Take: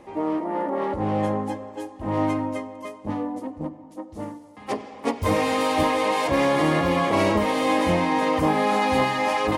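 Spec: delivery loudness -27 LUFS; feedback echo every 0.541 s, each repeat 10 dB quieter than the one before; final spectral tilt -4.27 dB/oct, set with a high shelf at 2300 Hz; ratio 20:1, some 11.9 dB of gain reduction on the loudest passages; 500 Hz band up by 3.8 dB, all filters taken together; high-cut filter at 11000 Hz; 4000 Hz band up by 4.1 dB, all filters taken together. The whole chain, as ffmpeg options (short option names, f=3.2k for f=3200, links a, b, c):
-af "lowpass=11k,equalizer=f=500:t=o:g=4.5,highshelf=f=2.3k:g=-4,equalizer=f=4k:t=o:g=9,acompressor=threshold=-26dB:ratio=20,aecho=1:1:541|1082|1623|2164:0.316|0.101|0.0324|0.0104,volume=4dB"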